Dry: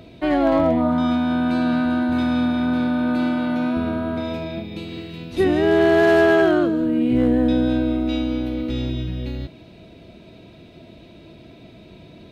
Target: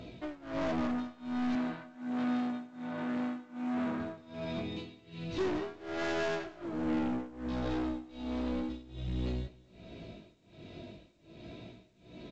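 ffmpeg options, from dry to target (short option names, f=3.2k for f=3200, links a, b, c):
-filter_complex "[0:a]asoftclip=type=tanh:threshold=-22.5dB,tremolo=f=1.3:d=0.96,flanger=delay=16:depth=4.6:speed=0.42,aeval=exprs='0.075*(cos(1*acos(clip(val(0)/0.075,-1,1)))-cos(1*PI/2))+0.00841*(cos(4*acos(clip(val(0)/0.075,-1,1)))-cos(4*PI/2))+0.0106*(cos(5*acos(clip(val(0)/0.075,-1,1)))-cos(5*PI/2))+0.00237*(cos(6*acos(clip(val(0)/0.075,-1,1)))-cos(6*PI/2))':c=same,asettb=1/sr,asplit=3[a][b][c];[a]atrim=end=1.554[d];[b]atrim=start=1.55:end=4,asetpts=PTS-STARTPTS,afade=t=in:d=0.004:c=qsin,afade=t=out:st=2.446:d=0.004:c=qsin,highpass=150,lowpass=3.1k[e];[c]atrim=start=3.996[f];[d][e]acrossfade=d=0.004:c1=hsin:c2=qsin[g];[g][f]acrossfade=d=0.004:c1=qsin:c2=hsin,aecho=1:1:201|402:0.0708|0.0241,volume=-4dB" -ar 16000 -c:a pcm_mulaw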